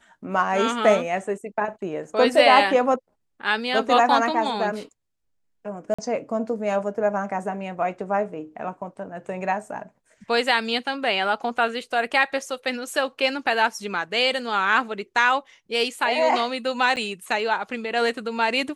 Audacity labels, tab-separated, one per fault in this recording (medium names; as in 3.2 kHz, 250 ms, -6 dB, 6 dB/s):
5.940000	5.990000	dropout 45 ms
16.960000	16.970000	dropout 8.2 ms